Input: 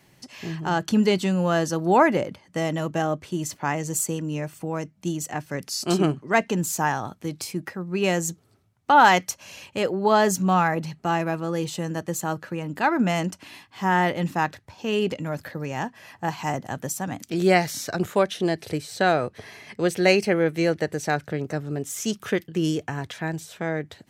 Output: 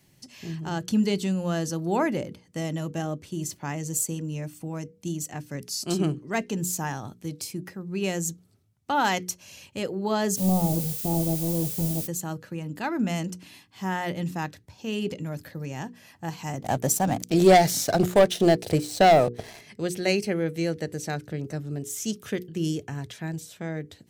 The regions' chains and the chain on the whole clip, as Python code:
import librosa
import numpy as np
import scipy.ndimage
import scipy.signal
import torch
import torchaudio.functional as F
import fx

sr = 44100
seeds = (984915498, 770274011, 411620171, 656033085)

y = fx.halfwave_hold(x, sr, at=(10.36, 12.06), fade=0.02)
y = fx.cheby2_lowpass(y, sr, hz=1600.0, order=4, stop_db=40, at=(10.36, 12.06), fade=0.02)
y = fx.dmg_noise_colour(y, sr, seeds[0], colour='blue', level_db=-33.0, at=(10.36, 12.06), fade=0.02)
y = fx.chain(y, sr, fx.peak_eq(hz=700.0, db=10.5, octaves=0.94),
    fx.leveller(passes=2), at=(16.61, 19.61))
y = fx.peak_eq(y, sr, hz=1100.0, db=-10.0, octaves=3.0)
y = fx.hum_notches(y, sr, base_hz=60, count=8)